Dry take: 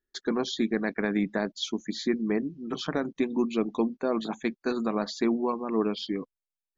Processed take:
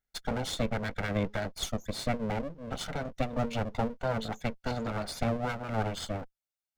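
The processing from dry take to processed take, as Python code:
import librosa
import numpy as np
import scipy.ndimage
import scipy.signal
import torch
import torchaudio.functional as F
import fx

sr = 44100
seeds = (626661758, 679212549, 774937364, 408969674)

y = fx.lower_of_two(x, sr, delay_ms=1.4)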